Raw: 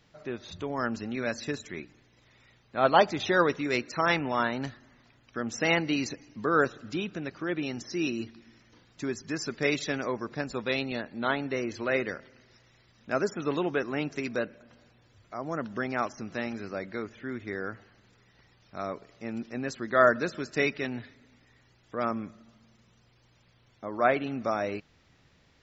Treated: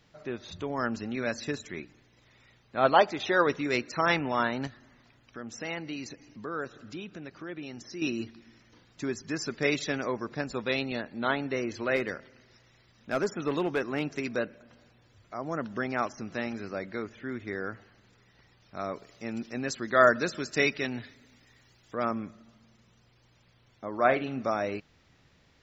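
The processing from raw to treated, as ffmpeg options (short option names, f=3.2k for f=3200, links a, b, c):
-filter_complex "[0:a]asettb=1/sr,asplit=3[a][b][c];[a]atrim=end=2.944[d];[b]atrim=start=2.94:end=3.47,asetpts=PTS-STARTPTS,afade=t=in:d=0.004:c=qsin,afade=t=out:st=0.526:d=0.004:c=qsin,bass=f=250:g=-8,treble=f=4k:g=-4[e];[c]atrim=start=3.466[f];[d][e]acrossfade=d=0.004:c1=hsin:c2=qsin[g];[g][f]acrossfade=d=0.004:c1=qsin:c2=hsin,asettb=1/sr,asplit=3[h][i][j];[h]atrim=end=4.674[k];[i]atrim=start=4.67:end=8.02,asetpts=PTS-STARTPTS,afade=t=in:d=0.004:c=qsin,afade=t=out:st=3.346:d=0.004:c=qsin,acompressor=threshold=-50dB:ratio=1.5:attack=3.2:release=140:knee=1:detection=peak[l];[j]atrim=start=8.016[m];[k][l]acrossfade=d=0.004:c1=hsin:c2=qsin[n];[n][m]acrossfade=d=0.004:c1=qsin:c2=hsin,asplit=3[o][p][q];[o]afade=t=out:st=11.95:d=0.02[r];[p]volume=21dB,asoftclip=hard,volume=-21dB,afade=t=in:st=11.95:d=0.02,afade=t=out:st=14.24:d=0.02[s];[q]afade=t=in:st=14.24:d=0.02[t];[r][s][t]amix=inputs=3:normalize=0,asettb=1/sr,asplit=3[u][v][w];[u]atrim=end=18.934[x];[v]atrim=start=18.93:end=21.97,asetpts=PTS-STARTPTS,afade=t=in:d=0.004:c=qsin,afade=t=out:st=3.036:d=0.004:c=qsin,highshelf=f=3.7k:g=8.5[y];[w]atrim=start=21.966[z];[x][y]acrossfade=d=0.004:c1=hsin:c2=qsin[aa];[aa][z]acrossfade=d=0.004:c1=qsin:c2=hsin,asettb=1/sr,asplit=3[ab][ac][ad];[ab]atrim=end=23.984[ae];[ac]atrim=start=23.98:end=24.42,asetpts=PTS-STARTPTS,afade=t=in:d=0.004:c=qsin,afade=t=out:st=0.436:d=0.004:c=qsin,asplit=2[af][ag];[ag]adelay=45,volume=-12dB[ah];[af][ah]amix=inputs=2:normalize=0,atrim=end_sample=19404[ai];[ad]atrim=start=24.416[aj];[ae][ai]acrossfade=d=0.004:c1=hsin:c2=qsin[ak];[ak][aj]acrossfade=d=0.004:c1=qsin:c2=hsin"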